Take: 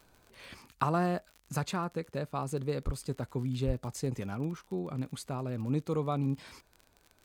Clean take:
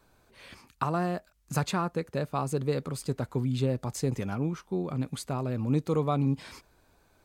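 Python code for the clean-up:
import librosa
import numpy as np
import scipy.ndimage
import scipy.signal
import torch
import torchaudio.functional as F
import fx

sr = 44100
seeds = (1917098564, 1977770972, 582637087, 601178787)

y = fx.fix_declick_ar(x, sr, threshold=6.5)
y = fx.highpass(y, sr, hz=140.0, slope=24, at=(2.85, 2.97), fade=0.02)
y = fx.highpass(y, sr, hz=140.0, slope=24, at=(3.66, 3.78), fade=0.02)
y = fx.gain(y, sr, db=fx.steps((0.0, 0.0), (1.3, 4.5)))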